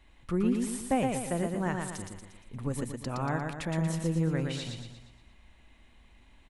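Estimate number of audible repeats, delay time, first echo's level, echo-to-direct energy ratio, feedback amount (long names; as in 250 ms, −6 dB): 5, 117 ms, −4.0 dB, −3.0 dB, 48%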